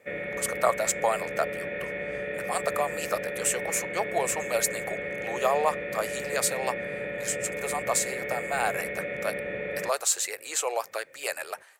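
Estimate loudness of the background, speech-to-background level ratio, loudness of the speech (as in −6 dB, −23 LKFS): −33.0 LKFS, 3.5 dB, −29.5 LKFS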